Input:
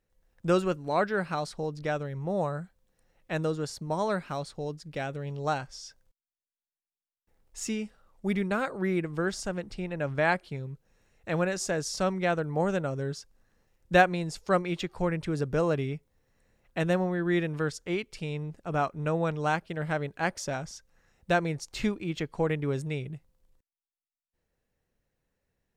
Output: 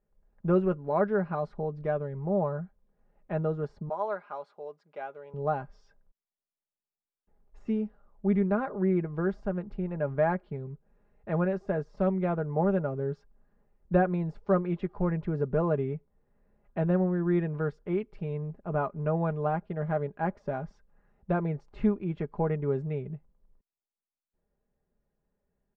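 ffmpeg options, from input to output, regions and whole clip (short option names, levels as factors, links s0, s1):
-filter_complex "[0:a]asettb=1/sr,asplit=3[s0][s1][s2];[s0]atrim=end=3.894[s3];[s1]atrim=start=3.89:end=5.34,asetpts=PTS-STARTPTS,afade=t=in:d=0.004:c=qsin,afade=t=out:st=1.446:d=0.004:c=qsin,highpass=670,bandreject=f=1800:w=12[s4];[s2]atrim=start=5.336[s5];[s3][s4]acrossfade=d=0.004:c1=hsin:c2=qsin[s6];[s6][s5]acrossfade=d=0.004:c1=qsin:c2=hsin,deesser=1,lowpass=1100,aecho=1:1:4.9:0.54"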